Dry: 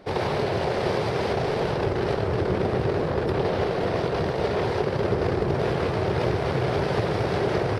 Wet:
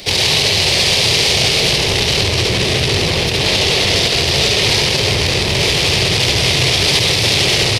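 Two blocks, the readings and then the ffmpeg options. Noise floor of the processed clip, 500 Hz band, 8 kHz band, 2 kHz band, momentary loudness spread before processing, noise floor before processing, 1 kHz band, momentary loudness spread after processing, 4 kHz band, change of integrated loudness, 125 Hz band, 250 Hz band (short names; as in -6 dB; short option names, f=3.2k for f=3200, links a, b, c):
-16 dBFS, +3.5 dB, n/a, +16.5 dB, 1 LU, -27 dBFS, +4.0 dB, 3 LU, +27.0 dB, +13.0 dB, +8.0 dB, +4.5 dB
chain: -filter_complex "[0:a]acrossover=split=140[a][b];[a]acontrast=85[c];[c][b]amix=inputs=2:normalize=0,asoftclip=type=tanh:threshold=-25dB,aexciter=amount=8.3:drive=8.2:freq=2.2k,aecho=1:1:69.97|291.5:0.631|0.316,alimiter=level_in=10dB:limit=-1dB:release=50:level=0:latency=1,volume=-2dB"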